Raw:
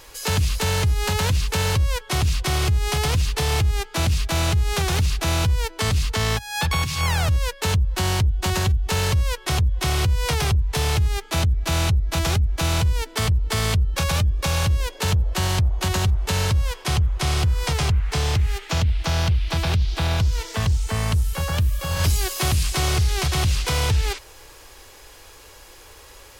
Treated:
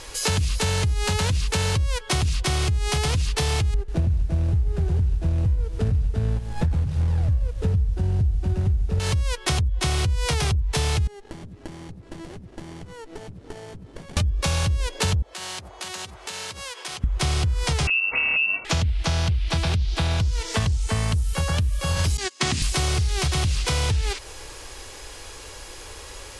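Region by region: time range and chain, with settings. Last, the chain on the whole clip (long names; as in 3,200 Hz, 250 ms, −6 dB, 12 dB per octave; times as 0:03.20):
0:03.74–0:09.00: running median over 41 samples + low-shelf EQ 140 Hz +8.5 dB + feedback echo at a low word length 142 ms, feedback 35%, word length 6 bits, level −13.5 dB
0:11.07–0:14.17: high-pass filter 150 Hz 24 dB per octave + downward compressor 8 to 1, threshold −40 dBFS + windowed peak hold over 33 samples
0:15.22–0:17.04: high-pass filter 220 Hz + low-shelf EQ 460 Hz −11 dB + downward compressor 12 to 1, threshold −35 dBFS
0:17.87–0:18.65: phaser with its sweep stopped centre 950 Hz, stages 6 + voice inversion scrambler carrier 2,700 Hz
0:22.17–0:22.62: noise gate −25 dBFS, range −23 dB + loudspeaker in its box 150–8,100 Hz, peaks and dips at 250 Hz +9 dB, 550 Hz −7 dB, 1,900 Hz +4 dB
whole clip: parametric band 1,100 Hz −2.5 dB 2.6 octaves; downward compressor, threshold −27 dBFS; Butterworth low-pass 11,000 Hz 48 dB per octave; level +7 dB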